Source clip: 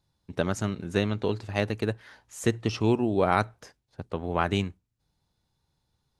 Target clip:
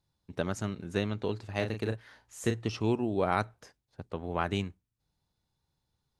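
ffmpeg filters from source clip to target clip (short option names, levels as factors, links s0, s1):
-filter_complex "[0:a]asettb=1/sr,asplit=3[s0][s1][s2];[s0]atrim=end=1.564[s3];[s1]atrim=start=1.56:end=2.69,asetpts=PTS-STARTPTS,afade=t=in:d=0.004:c=qsin,afade=t=out:st=1.126:d=0.004:c=qsin,asplit=2[s4][s5];[s5]adelay=36,volume=0.447[s6];[s4][s6]amix=inputs=2:normalize=0,atrim=end_sample=49833[s7];[s2]atrim=start=2.686[s8];[s3][s7]acrossfade=d=0.004:c1=hsin:c2=qsin[s9];[s9][s8]acrossfade=d=0.004:c1=qsin:c2=hsin,volume=0.562"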